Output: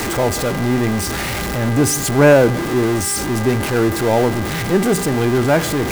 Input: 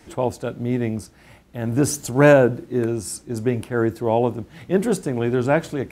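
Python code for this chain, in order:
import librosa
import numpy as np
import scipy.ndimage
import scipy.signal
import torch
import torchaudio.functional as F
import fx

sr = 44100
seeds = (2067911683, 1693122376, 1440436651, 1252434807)

y = x + 0.5 * 10.0 ** (-18.0 / 20.0) * np.sign(x)
y = fx.dmg_buzz(y, sr, base_hz=400.0, harmonics=5, level_db=-32.0, tilt_db=0, odd_only=False)
y = y * librosa.db_to_amplitude(1.0)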